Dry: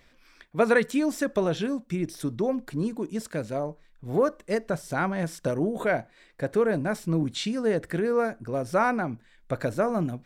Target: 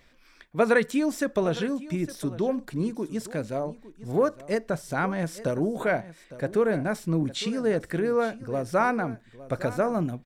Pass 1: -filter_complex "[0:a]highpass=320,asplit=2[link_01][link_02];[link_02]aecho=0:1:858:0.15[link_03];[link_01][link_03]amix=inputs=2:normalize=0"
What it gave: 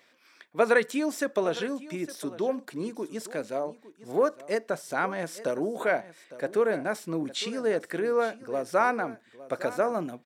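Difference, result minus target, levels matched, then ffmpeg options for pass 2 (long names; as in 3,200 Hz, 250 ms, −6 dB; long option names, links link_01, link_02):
250 Hz band −3.5 dB
-filter_complex "[0:a]asplit=2[link_01][link_02];[link_02]aecho=0:1:858:0.15[link_03];[link_01][link_03]amix=inputs=2:normalize=0"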